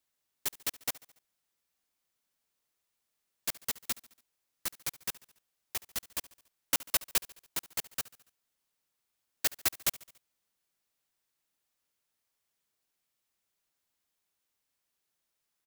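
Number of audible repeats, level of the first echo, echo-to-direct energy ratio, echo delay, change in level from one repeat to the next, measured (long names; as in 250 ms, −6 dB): 3, −20.0 dB, −18.5 dB, 71 ms, −5.0 dB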